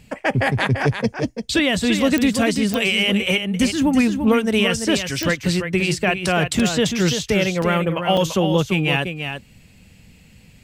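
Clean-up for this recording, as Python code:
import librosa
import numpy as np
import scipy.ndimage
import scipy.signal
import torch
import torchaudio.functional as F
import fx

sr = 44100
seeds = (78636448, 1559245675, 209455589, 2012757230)

y = fx.fix_declick_ar(x, sr, threshold=10.0)
y = fx.fix_interpolate(y, sr, at_s=(6.59, 7.62, 8.17), length_ms=4.0)
y = fx.fix_echo_inverse(y, sr, delay_ms=340, level_db=-7.5)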